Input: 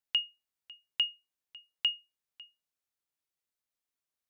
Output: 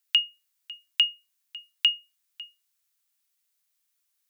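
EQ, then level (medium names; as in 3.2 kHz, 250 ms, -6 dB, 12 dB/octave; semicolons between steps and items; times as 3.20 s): high-pass 940 Hz; tilt EQ +2.5 dB/octave; dynamic bell 5 kHz, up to -5 dB, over -39 dBFS, Q 0.84; +6.0 dB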